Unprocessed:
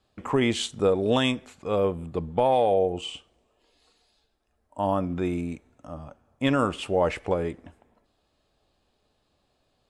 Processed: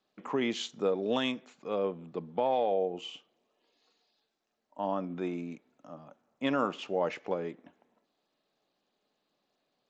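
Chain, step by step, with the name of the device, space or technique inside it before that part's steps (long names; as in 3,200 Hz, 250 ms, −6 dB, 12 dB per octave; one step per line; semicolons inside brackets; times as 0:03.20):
0:05.07–0:06.87: dynamic equaliser 830 Hz, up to +4 dB, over −36 dBFS, Q 1.1
Bluetooth headset (high-pass filter 170 Hz 24 dB per octave; downsampling to 16,000 Hz; level −7 dB; SBC 64 kbit/s 16,000 Hz)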